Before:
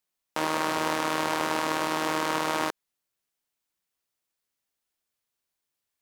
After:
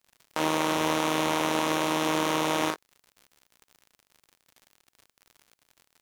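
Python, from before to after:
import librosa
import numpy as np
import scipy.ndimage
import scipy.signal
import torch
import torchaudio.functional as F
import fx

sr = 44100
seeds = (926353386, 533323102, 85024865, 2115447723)

y = fx.room_early_taps(x, sr, ms=(38, 58), db=(-3.5, -15.5))
y = fx.dmg_crackle(y, sr, seeds[0], per_s=87.0, level_db=-41.0)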